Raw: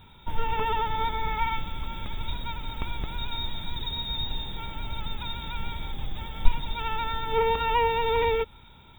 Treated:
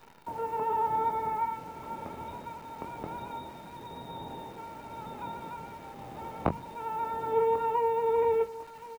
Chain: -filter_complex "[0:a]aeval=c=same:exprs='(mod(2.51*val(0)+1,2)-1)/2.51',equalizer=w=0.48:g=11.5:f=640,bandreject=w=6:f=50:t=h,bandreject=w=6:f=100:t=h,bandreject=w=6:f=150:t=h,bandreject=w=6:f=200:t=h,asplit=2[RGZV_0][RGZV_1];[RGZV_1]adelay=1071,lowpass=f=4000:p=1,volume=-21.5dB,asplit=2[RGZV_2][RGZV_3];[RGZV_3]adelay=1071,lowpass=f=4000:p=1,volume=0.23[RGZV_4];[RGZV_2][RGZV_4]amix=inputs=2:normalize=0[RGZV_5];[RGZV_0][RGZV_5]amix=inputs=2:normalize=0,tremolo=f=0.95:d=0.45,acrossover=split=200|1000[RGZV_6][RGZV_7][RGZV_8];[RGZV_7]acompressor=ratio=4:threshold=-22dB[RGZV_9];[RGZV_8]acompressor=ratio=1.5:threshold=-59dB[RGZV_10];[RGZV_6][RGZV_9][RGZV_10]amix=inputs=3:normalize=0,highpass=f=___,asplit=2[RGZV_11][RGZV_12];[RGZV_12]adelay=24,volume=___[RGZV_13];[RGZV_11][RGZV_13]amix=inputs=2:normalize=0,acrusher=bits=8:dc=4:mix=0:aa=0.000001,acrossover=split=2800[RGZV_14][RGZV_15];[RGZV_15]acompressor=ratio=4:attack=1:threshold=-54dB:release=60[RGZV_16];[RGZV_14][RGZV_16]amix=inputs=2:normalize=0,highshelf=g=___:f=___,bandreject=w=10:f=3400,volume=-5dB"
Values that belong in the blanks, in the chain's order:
140, -8dB, 4, 10000